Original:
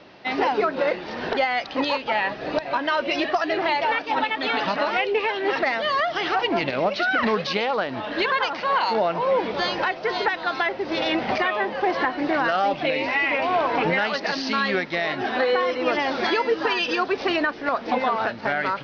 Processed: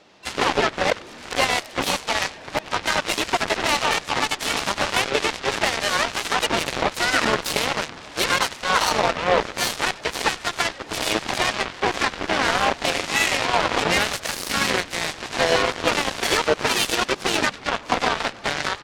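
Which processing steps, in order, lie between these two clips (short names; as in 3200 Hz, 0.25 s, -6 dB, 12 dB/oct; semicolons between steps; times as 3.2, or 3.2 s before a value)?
high shelf 4500 Hz +9 dB; on a send: frequency-shifting echo 96 ms, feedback 49%, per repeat -98 Hz, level -9 dB; on the sum: harmoniser -3 st -16 dB, +5 st -4 dB, +12 st -16 dB; added harmonics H 7 -14 dB, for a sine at -6.5 dBFS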